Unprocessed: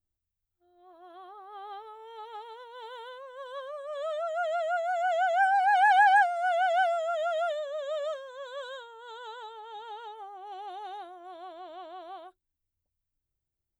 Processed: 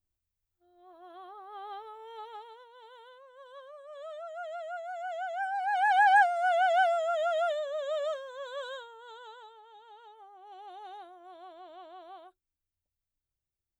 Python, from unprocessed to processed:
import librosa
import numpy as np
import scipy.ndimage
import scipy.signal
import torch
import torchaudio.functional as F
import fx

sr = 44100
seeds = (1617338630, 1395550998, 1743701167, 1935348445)

y = fx.gain(x, sr, db=fx.line((2.19, 0.0), (2.8, -9.5), (5.48, -9.5), (6.21, 0.5), (8.73, 0.5), (9.81, -12.0), (10.89, -5.0)))